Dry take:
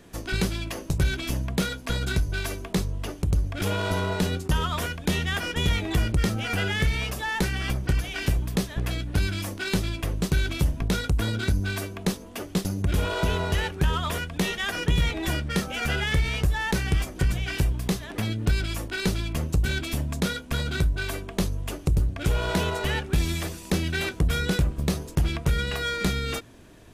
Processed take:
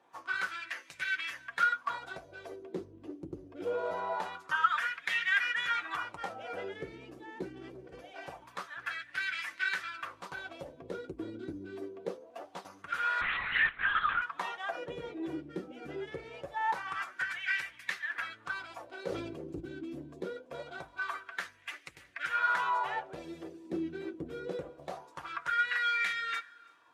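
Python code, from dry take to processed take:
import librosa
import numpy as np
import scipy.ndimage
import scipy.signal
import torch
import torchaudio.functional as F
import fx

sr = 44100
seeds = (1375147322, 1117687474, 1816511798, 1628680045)

y = fx.spec_quant(x, sr, step_db=15)
y = fx.notch_comb(y, sr, f0_hz=210.0)
y = fx.echo_thinned(y, sr, ms=332, feedback_pct=44, hz=420.0, wet_db=-22.0)
y = fx.wah_lfo(y, sr, hz=0.24, low_hz=320.0, high_hz=2000.0, q=3.9)
y = fx.over_compress(y, sr, threshold_db=-47.0, ratio=-1.0, at=(7.52, 7.96))
y = fx.highpass(y, sr, hz=150.0, slope=6)
y = fx.high_shelf(y, sr, hz=2400.0, db=11.0)
y = fx.lpc_vocoder(y, sr, seeds[0], excitation='whisper', order=8, at=(13.21, 14.22))
y = fx.dynamic_eq(y, sr, hz=1300.0, q=1.0, threshold_db=-51.0, ratio=4.0, max_db=8)
y = fx.sustainer(y, sr, db_per_s=36.0, at=(18.92, 19.59), fade=0.02)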